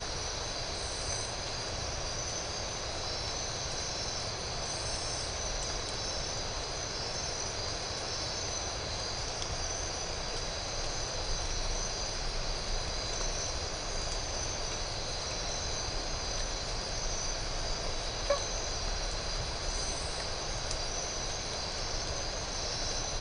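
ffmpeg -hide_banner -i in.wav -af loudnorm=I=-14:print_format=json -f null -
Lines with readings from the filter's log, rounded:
"input_i" : "-34.4",
"input_tp" : "-16.4",
"input_lra" : "0.5",
"input_thresh" : "-44.4",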